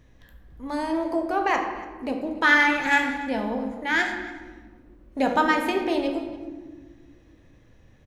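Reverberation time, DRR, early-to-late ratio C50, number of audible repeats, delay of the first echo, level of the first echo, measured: 1.5 s, 3.0 dB, 5.5 dB, 1, 286 ms, −19.5 dB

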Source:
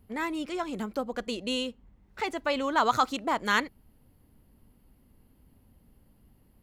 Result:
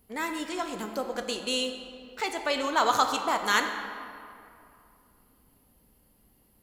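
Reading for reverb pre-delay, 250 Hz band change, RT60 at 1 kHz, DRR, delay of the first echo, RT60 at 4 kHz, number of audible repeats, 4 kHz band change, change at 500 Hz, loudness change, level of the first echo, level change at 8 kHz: 3 ms, −2.5 dB, 2.5 s, 5.0 dB, no echo audible, 1.5 s, no echo audible, +4.0 dB, +0.5 dB, +1.0 dB, no echo audible, +8.0 dB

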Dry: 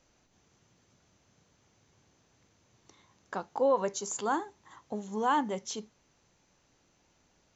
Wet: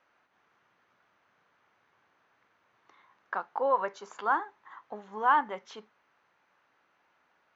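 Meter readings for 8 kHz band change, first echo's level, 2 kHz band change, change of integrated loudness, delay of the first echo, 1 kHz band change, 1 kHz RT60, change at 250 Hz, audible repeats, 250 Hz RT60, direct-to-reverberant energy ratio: can't be measured, no echo audible, +6.5 dB, +2.0 dB, no echo audible, +4.0 dB, no reverb audible, −9.5 dB, no echo audible, no reverb audible, no reverb audible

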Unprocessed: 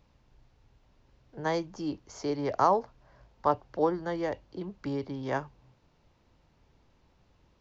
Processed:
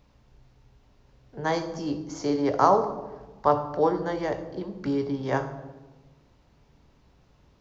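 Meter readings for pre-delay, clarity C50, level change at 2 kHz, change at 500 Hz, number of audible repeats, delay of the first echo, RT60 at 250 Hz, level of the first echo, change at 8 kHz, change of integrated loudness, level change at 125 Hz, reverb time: 3 ms, 10.5 dB, +4.0 dB, +5.0 dB, no echo audible, no echo audible, 1.6 s, no echo audible, can't be measured, +4.5 dB, +5.0 dB, 1.2 s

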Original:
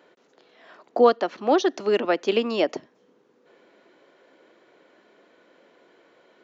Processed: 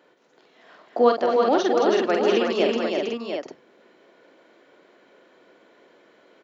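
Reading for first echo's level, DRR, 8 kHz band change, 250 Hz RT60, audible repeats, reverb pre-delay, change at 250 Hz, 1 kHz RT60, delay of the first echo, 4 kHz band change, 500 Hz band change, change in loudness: −5.5 dB, no reverb audible, can't be measured, no reverb audible, 6, no reverb audible, +2.0 dB, no reverb audible, 46 ms, +2.0 dB, +2.0 dB, +1.0 dB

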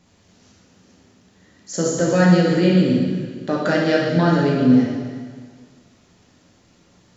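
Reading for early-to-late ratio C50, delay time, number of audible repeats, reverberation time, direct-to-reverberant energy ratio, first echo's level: 0.0 dB, no echo audible, no echo audible, 1.7 s, −4.5 dB, no echo audible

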